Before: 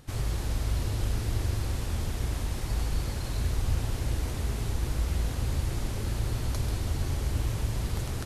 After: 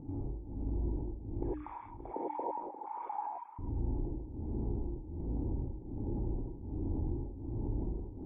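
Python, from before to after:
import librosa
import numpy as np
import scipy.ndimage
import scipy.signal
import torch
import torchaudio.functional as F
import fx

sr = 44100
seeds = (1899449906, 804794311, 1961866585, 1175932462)

y = fx.sine_speech(x, sr, at=(1.42, 3.59))
y = fx.formant_cascade(y, sr, vowel='u')
y = fx.tilt_shelf(y, sr, db=6.5, hz=1300.0)
y = fx.hum_notches(y, sr, base_hz=60, count=5)
y = y * (1.0 - 0.99 / 2.0 + 0.99 / 2.0 * np.cos(2.0 * np.pi * 1.3 * (np.arange(len(y)) / sr)))
y = y + 10.0 ** (-23.0 / 20.0) * np.pad(y, (int(580 * sr / 1000.0), 0))[:len(y)]
y = fx.rev_gated(y, sr, seeds[0], gate_ms=120, shape='rising', drr_db=-5.0)
y = fx.env_flatten(y, sr, amount_pct=50)
y = y * 10.0 ** (-4.0 / 20.0)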